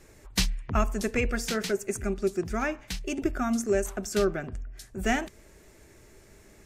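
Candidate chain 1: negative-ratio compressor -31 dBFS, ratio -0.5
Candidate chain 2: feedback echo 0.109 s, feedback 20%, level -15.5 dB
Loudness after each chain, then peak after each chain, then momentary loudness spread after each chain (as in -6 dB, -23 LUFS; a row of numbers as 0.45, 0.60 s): -33.5, -29.0 LUFS; -16.5, -12.0 dBFS; 20, 8 LU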